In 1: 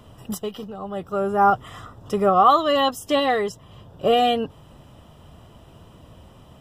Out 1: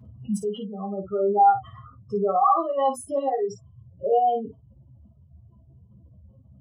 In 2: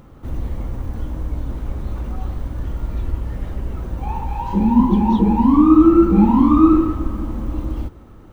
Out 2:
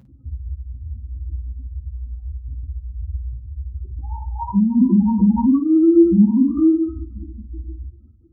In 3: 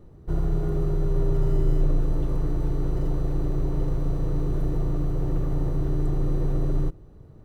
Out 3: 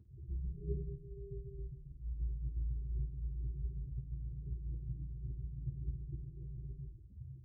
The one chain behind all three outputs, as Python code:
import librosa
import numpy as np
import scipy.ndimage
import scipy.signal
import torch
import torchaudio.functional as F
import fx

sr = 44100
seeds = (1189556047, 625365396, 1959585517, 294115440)

p1 = fx.spec_expand(x, sr, power=3.1)
p2 = scipy.signal.sosfilt(scipy.signal.butter(4, 67.0, 'highpass', fs=sr, output='sos'), p1)
p3 = fx.rider(p2, sr, range_db=4, speed_s=2.0)
p4 = fx.notch_comb(p3, sr, f0_hz=150.0)
p5 = p4 + fx.room_early_taps(p4, sr, ms=(15, 53), db=(-7.0, -9.0), dry=0)
y = p5 * 10.0 ** (-1.5 / 20.0)